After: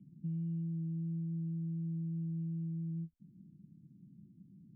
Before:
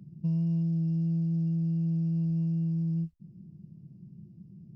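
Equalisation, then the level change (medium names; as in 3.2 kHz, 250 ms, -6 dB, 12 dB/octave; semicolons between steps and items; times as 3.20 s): cascade formant filter i; 0.0 dB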